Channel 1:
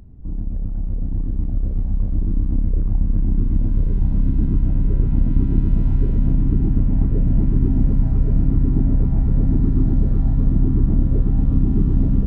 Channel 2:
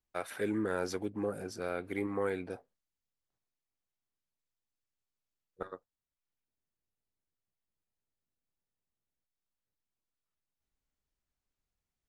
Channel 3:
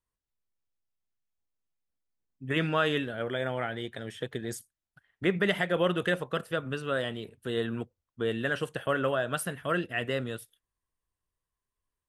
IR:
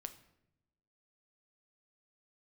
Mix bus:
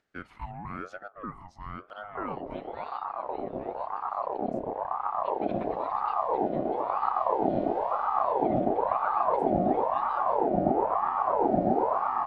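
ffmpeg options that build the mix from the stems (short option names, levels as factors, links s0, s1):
-filter_complex "[0:a]adelay=1900,volume=1.06[s0];[1:a]equalizer=f=600:t=o:w=1.6:g=12,volume=0.282,asplit=2[s1][s2];[s2]volume=0.251[s3];[2:a]volume=0.106[s4];[3:a]atrim=start_sample=2205[s5];[s3][s5]afir=irnorm=-1:irlink=0[s6];[s0][s1][s4][s6]amix=inputs=4:normalize=0,acompressor=mode=upward:threshold=0.00158:ratio=2.5,highpass=140,lowpass=4800,aeval=exprs='val(0)*sin(2*PI*740*n/s+740*0.4/0.99*sin(2*PI*0.99*n/s))':c=same"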